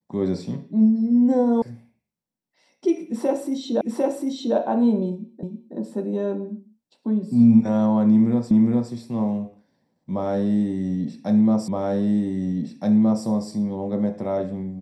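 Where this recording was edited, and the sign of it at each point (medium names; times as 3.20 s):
1.62 s: sound stops dead
3.81 s: repeat of the last 0.75 s
5.43 s: repeat of the last 0.32 s
8.51 s: repeat of the last 0.41 s
11.68 s: repeat of the last 1.57 s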